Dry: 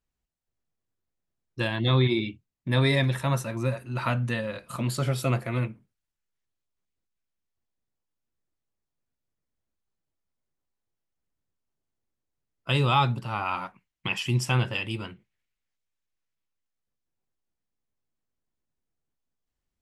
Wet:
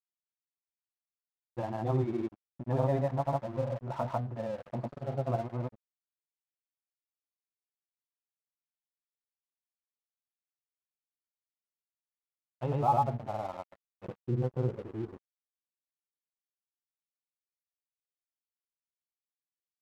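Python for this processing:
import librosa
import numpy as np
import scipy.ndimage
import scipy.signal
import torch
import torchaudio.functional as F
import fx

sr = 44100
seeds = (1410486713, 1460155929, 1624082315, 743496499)

y = fx.granulator(x, sr, seeds[0], grain_ms=100.0, per_s=20.0, spray_ms=100.0, spread_st=0)
y = fx.filter_sweep_lowpass(y, sr, from_hz=760.0, to_hz=370.0, start_s=12.69, end_s=15.39, q=4.9)
y = np.sign(y) * np.maximum(np.abs(y) - 10.0 ** (-41.5 / 20.0), 0.0)
y = y * 10.0 ** (-6.5 / 20.0)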